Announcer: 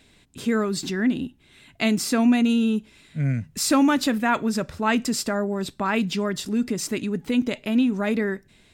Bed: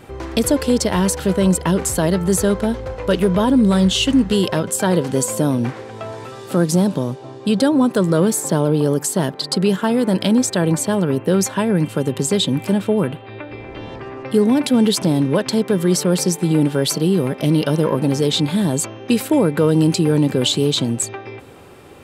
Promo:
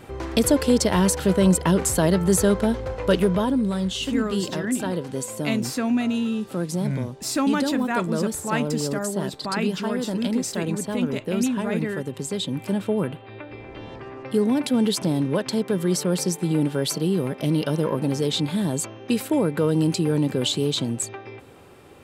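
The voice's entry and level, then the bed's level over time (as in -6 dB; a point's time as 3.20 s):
3.65 s, -4.0 dB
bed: 3.14 s -2 dB
3.73 s -10.5 dB
12.32 s -10.5 dB
12.84 s -6 dB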